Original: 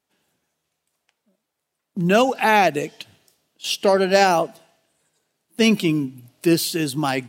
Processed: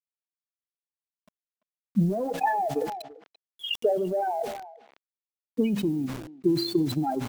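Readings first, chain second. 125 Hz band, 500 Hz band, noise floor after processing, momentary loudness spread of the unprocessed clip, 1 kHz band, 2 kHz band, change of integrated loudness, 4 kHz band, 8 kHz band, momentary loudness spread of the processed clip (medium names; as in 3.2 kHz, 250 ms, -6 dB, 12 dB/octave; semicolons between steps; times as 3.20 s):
-4.0 dB, -8.0 dB, under -85 dBFS, 14 LU, -8.5 dB, -16.0 dB, -8.5 dB, -9.0 dB, -17.0 dB, 12 LU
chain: loudest bins only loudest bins 4; feedback comb 68 Hz, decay 0.82 s, harmonics all, mix 40%; peak limiter -22.5 dBFS, peak gain reduction 10.5 dB; transient shaper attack +9 dB, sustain -9 dB; low-pass 4.8 kHz 12 dB/octave; bit crusher 9-bit; speakerphone echo 340 ms, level -27 dB; decay stretcher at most 62 dB/s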